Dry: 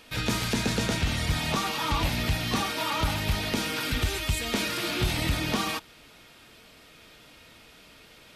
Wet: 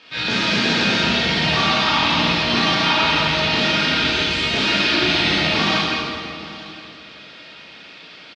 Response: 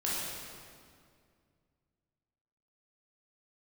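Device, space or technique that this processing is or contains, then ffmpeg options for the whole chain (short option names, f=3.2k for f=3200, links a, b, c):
PA in a hall: -filter_complex "[0:a]highpass=160,lowpass=f=5k:w=0.5412,lowpass=f=5k:w=1.3066,equalizer=f=3.4k:t=o:w=2.8:g=6.5,aecho=1:1:167:0.501,aecho=1:1:861:0.112[a];[1:a]atrim=start_sample=2205[b];[a][b]afir=irnorm=-1:irlink=0"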